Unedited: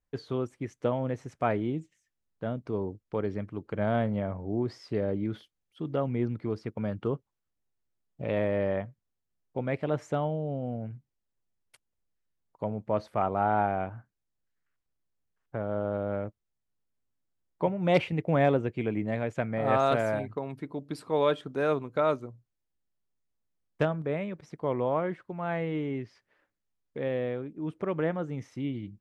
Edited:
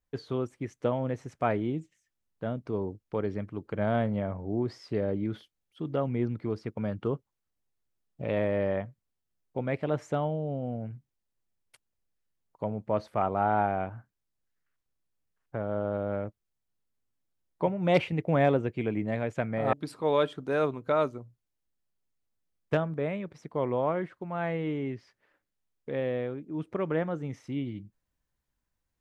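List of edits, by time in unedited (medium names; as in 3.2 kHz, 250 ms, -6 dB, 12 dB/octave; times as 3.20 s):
19.73–20.81 s: delete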